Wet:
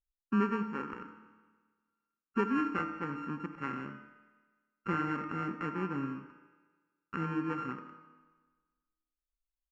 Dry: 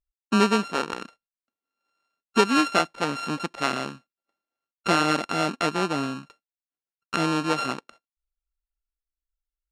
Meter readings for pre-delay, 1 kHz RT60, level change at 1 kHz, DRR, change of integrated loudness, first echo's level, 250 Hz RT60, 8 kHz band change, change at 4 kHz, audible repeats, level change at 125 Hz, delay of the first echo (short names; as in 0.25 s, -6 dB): 3 ms, 1.4 s, -11.5 dB, 6.5 dB, -11.0 dB, -16.0 dB, 1.4 s, under -30 dB, -26.5 dB, 1, -6.5 dB, 80 ms